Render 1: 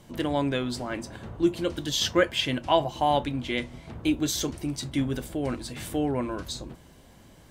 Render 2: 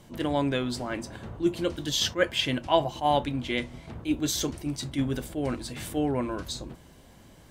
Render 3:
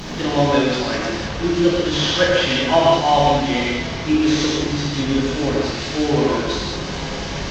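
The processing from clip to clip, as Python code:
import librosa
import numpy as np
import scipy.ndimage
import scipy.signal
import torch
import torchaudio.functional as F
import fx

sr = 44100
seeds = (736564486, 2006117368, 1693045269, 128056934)

y1 = fx.attack_slew(x, sr, db_per_s=290.0)
y2 = fx.delta_mod(y1, sr, bps=32000, step_db=-30.0)
y2 = y2 + 10.0 ** (-13.5 / 20.0) * np.pad(y2, (int(304 * sr / 1000.0), 0))[:len(y2)]
y2 = fx.rev_gated(y2, sr, seeds[0], gate_ms=240, shape='flat', drr_db=-6.0)
y2 = y2 * 10.0 ** (3.5 / 20.0)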